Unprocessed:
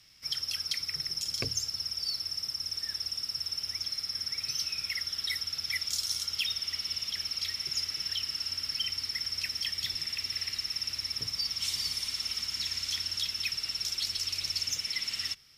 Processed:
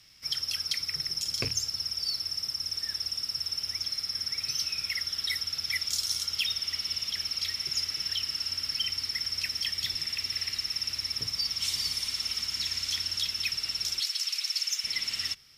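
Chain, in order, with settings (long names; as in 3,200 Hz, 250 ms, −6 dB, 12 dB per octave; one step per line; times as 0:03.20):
loose part that buzzes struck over −39 dBFS, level −30 dBFS
0:14.00–0:14.84: high-pass filter 1,200 Hz 12 dB per octave
level +2 dB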